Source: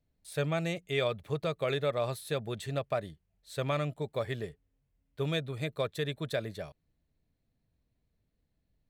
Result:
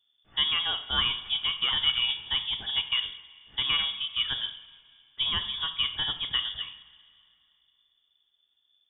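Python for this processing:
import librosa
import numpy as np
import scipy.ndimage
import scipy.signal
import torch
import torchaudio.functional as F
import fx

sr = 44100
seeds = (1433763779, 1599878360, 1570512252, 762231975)

y = fx.rev_double_slope(x, sr, seeds[0], early_s=0.64, late_s=2.6, knee_db=-15, drr_db=6.5)
y = fx.freq_invert(y, sr, carrier_hz=3500)
y = F.gain(torch.from_numpy(y), 3.0).numpy()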